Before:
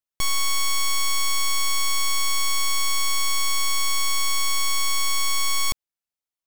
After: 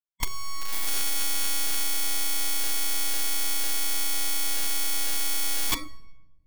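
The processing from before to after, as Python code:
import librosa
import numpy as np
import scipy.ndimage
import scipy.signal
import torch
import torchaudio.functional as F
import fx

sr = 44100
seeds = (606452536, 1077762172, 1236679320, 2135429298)

y = fx.room_shoebox(x, sr, seeds[0], volume_m3=500.0, walls='mixed', distance_m=5.7)
y = fx.noise_reduce_blind(y, sr, reduce_db=24)
y = (np.mod(10.0 ** (20.0 / 20.0) * y + 1.0, 2.0) - 1.0) / 10.0 ** (20.0 / 20.0)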